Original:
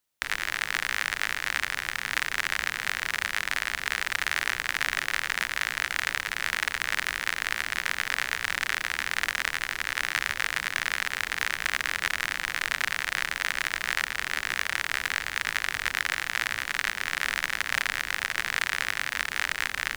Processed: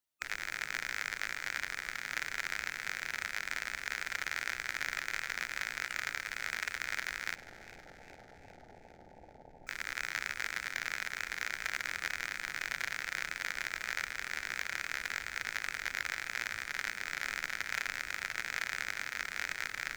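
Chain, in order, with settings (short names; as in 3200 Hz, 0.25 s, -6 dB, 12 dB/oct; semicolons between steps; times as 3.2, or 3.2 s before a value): bin magnitudes rounded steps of 15 dB; 7.35–9.67 Chebyshev low-pass 880 Hz, order 8; warbling echo 0.404 s, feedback 63%, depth 52 cents, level -17 dB; gain -8.5 dB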